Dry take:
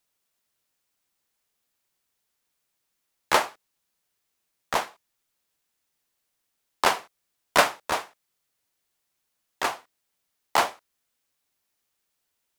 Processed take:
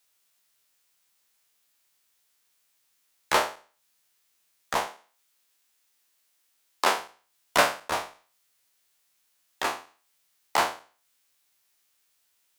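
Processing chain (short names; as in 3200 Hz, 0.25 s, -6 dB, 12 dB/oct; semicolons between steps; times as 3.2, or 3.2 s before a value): spectral trails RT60 0.37 s; 4.87–6.98 HPF 180 Hz 24 dB/oct; mismatched tape noise reduction encoder only; gain -3.5 dB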